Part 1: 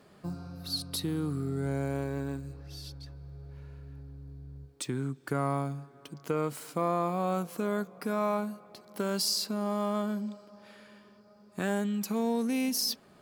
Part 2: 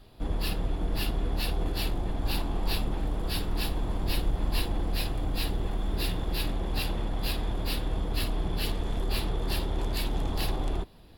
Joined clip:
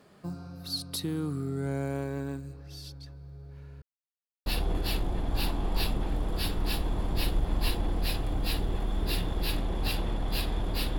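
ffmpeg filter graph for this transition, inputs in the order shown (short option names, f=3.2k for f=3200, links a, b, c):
-filter_complex "[0:a]apad=whole_dur=10.98,atrim=end=10.98,asplit=2[a][b];[a]atrim=end=3.82,asetpts=PTS-STARTPTS,afade=t=out:st=3.816:d=0.004:c=hsin[c];[b]atrim=start=3.82:end=4.46,asetpts=PTS-STARTPTS,volume=0[d];[1:a]atrim=start=1.37:end=7.89,asetpts=PTS-STARTPTS,afade=t=in:d=0.004:c=hsin[e];[c][d][e]concat=n=3:v=0:a=1"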